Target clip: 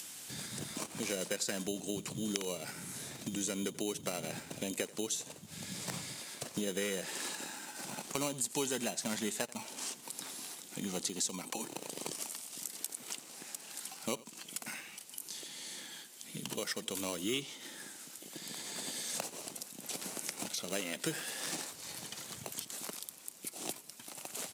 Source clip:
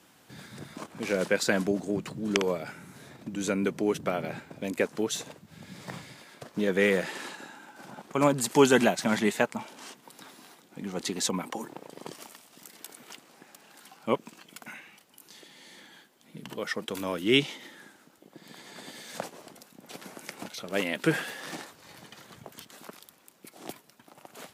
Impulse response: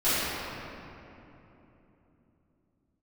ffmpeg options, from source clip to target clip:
-filter_complex "[0:a]acrossover=split=1600[a][b];[a]acrusher=samples=13:mix=1:aa=0.000001[c];[b]acompressor=mode=upward:threshold=-47dB:ratio=2.5[d];[c][d]amix=inputs=2:normalize=0,equalizer=f=8.7k:w=0.62:g=12,acompressor=threshold=-35dB:ratio=4,asplit=2[e][f];[f]adelay=87.46,volume=-20dB,highshelf=f=4k:g=-1.97[g];[e][g]amix=inputs=2:normalize=0"

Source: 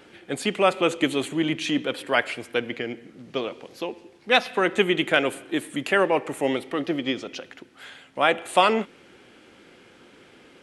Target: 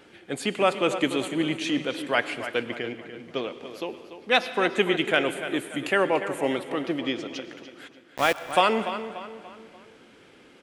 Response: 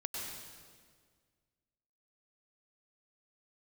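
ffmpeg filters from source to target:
-filter_complex "[0:a]asplit=3[a][b][c];[a]afade=t=out:st=7.87:d=0.02[d];[b]aeval=exprs='val(0)*gte(abs(val(0)),0.0631)':c=same,afade=t=in:st=7.87:d=0.02,afade=t=out:st=8.52:d=0.02[e];[c]afade=t=in:st=8.52:d=0.02[f];[d][e][f]amix=inputs=3:normalize=0,asplit=2[g][h];[h]adelay=291,lowpass=f=4.7k:p=1,volume=-11dB,asplit=2[i][j];[j]adelay=291,lowpass=f=4.7k:p=1,volume=0.43,asplit=2[k][l];[l]adelay=291,lowpass=f=4.7k:p=1,volume=0.43,asplit=2[m][n];[n]adelay=291,lowpass=f=4.7k:p=1,volume=0.43[o];[g][i][k][m][o]amix=inputs=5:normalize=0,asplit=2[p][q];[1:a]atrim=start_sample=2205[r];[q][r]afir=irnorm=-1:irlink=0,volume=-12.5dB[s];[p][s]amix=inputs=2:normalize=0,volume=-3.5dB"

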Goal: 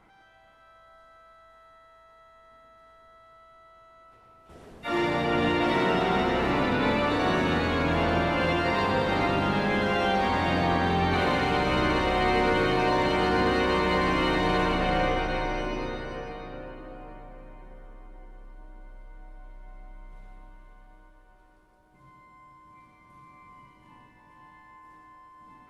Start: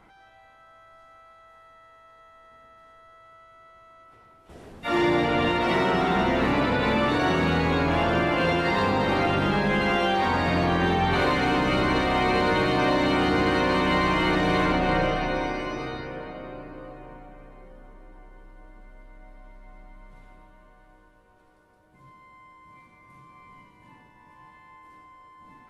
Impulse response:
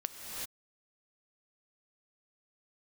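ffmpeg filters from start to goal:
-filter_complex "[0:a]asplit=2[a][b];[1:a]atrim=start_sample=2205,adelay=125[c];[b][c]afir=irnorm=-1:irlink=0,volume=-6dB[d];[a][d]amix=inputs=2:normalize=0,volume=-3.5dB"

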